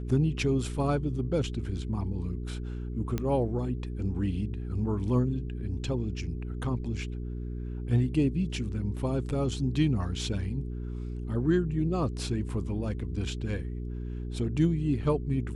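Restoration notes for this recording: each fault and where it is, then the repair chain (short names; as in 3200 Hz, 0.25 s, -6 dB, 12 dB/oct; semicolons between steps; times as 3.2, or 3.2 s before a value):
hum 60 Hz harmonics 7 -35 dBFS
3.18 pop -18 dBFS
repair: de-click; de-hum 60 Hz, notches 7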